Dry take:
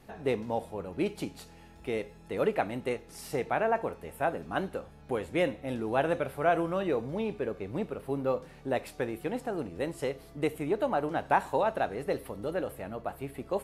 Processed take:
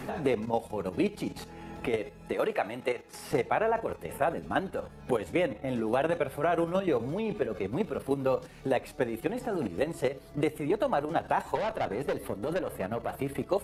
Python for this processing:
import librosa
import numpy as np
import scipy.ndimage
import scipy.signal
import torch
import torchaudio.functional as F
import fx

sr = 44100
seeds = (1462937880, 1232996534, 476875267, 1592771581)

y = fx.spec_quant(x, sr, step_db=15)
y = fx.level_steps(y, sr, step_db=10)
y = fx.highpass(y, sr, hz=560.0, slope=6, at=(2.33, 3.31))
y = fx.tube_stage(y, sr, drive_db=34.0, bias=0.45, at=(11.55, 13.16))
y = fx.band_squash(y, sr, depth_pct=70)
y = y * 10.0 ** (5.5 / 20.0)